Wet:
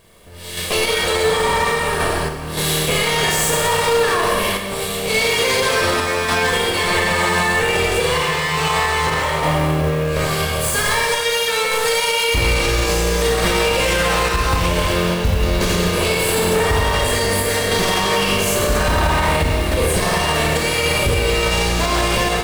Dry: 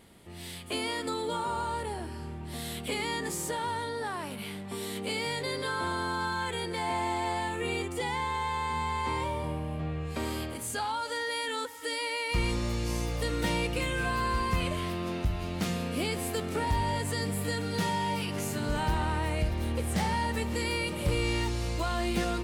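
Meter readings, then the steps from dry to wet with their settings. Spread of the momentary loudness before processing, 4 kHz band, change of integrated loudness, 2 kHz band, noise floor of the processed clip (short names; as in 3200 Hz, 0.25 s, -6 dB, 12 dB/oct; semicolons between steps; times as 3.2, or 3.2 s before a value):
6 LU, +17.0 dB, +14.5 dB, +16.5 dB, -24 dBFS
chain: minimum comb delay 1.8 ms; Schroeder reverb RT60 1.6 s, combs from 25 ms, DRR -3 dB; random-step tremolo; limiter -26 dBFS, peak gain reduction 11 dB; companded quantiser 6-bit; AGC gain up to 10 dB; gain +8 dB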